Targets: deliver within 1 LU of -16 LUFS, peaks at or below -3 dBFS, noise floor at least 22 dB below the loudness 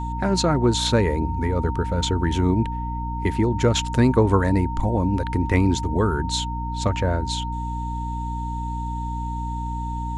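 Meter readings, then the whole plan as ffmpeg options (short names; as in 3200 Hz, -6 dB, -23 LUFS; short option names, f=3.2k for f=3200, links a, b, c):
hum 60 Hz; harmonics up to 300 Hz; hum level -26 dBFS; steady tone 920 Hz; tone level -30 dBFS; loudness -23.0 LUFS; peak -7.0 dBFS; loudness target -16.0 LUFS
-> -af "bandreject=f=60:t=h:w=6,bandreject=f=120:t=h:w=6,bandreject=f=180:t=h:w=6,bandreject=f=240:t=h:w=6,bandreject=f=300:t=h:w=6"
-af "bandreject=f=920:w=30"
-af "volume=7dB,alimiter=limit=-3dB:level=0:latency=1"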